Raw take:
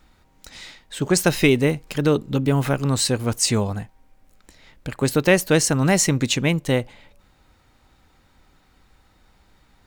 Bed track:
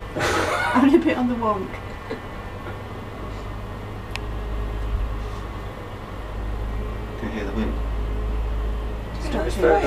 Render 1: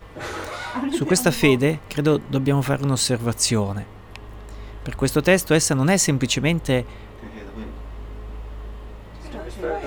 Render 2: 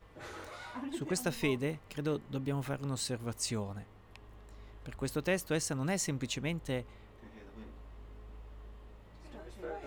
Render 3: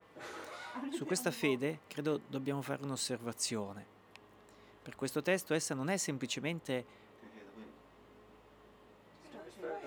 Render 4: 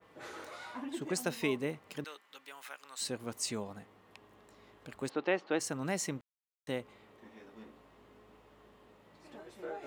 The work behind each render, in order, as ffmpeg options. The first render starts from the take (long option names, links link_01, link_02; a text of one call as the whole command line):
ffmpeg -i in.wav -i bed.wav -filter_complex "[1:a]volume=-9.5dB[link_01];[0:a][link_01]amix=inputs=2:normalize=0" out.wav
ffmpeg -i in.wav -af "volume=-15.5dB" out.wav
ffmpeg -i in.wav -af "highpass=190,adynamicequalizer=threshold=0.00398:dfrequency=3200:dqfactor=0.7:tfrequency=3200:tqfactor=0.7:attack=5:release=100:ratio=0.375:range=1.5:mode=cutabove:tftype=highshelf" out.wav
ffmpeg -i in.wav -filter_complex "[0:a]asettb=1/sr,asplit=3[link_01][link_02][link_03];[link_01]atrim=end=2.044[link_04];[link_02]atrim=start=2.04:end=3.01,asetpts=PTS-STARTPTS,afade=type=in:duration=0.004:curve=qsin,afade=type=out:start_time=0.966:duration=0.004:curve=qsin,highpass=1300[link_05];[link_03]atrim=start=3.006[link_06];[link_04][link_05]acrossfade=duration=0.004:curve1=hsin:curve2=qsin[link_07];[link_07][link_06]acrossfade=duration=0.004:curve1=qsin:curve2=hsin,asplit=3[link_08][link_09][link_10];[link_08]afade=type=out:start_time=5.08:duration=0.02[link_11];[link_09]highpass=260,equalizer=frequency=330:width_type=q:width=4:gain=5,equalizer=frequency=800:width_type=q:width=4:gain=7,equalizer=frequency=1300:width_type=q:width=4:gain=3,lowpass=frequency=3900:width=0.5412,lowpass=frequency=3900:width=1.3066,afade=type=in:start_time=5.08:duration=0.02,afade=type=out:start_time=5.59:duration=0.02[link_12];[link_10]afade=type=in:start_time=5.59:duration=0.02[link_13];[link_11][link_12][link_13]amix=inputs=3:normalize=0,asplit=3[link_14][link_15][link_16];[link_14]atrim=end=6.21,asetpts=PTS-STARTPTS,afade=type=out:start_time=6.206:duration=0.004:curve=hsin[link_17];[link_15]atrim=start=6.21:end=6.67,asetpts=PTS-STARTPTS,volume=0[link_18];[link_16]atrim=start=6.67,asetpts=PTS-STARTPTS,afade=type=in:duration=0.004:curve=hsin[link_19];[link_17][link_18][link_19]concat=n=3:v=0:a=1" out.wav